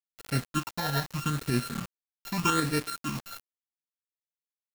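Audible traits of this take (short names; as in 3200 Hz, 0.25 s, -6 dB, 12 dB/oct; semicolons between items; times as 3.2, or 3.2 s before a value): a buzz of ramps at a fixed pitch in blocks of 32 samples; phasing stages 8, 0.81 Hz, lowest notch 330–1000 Hz; a quantiser's noise floor 6-bit, dither none; tremolo saw up 10 Hz, depth 45%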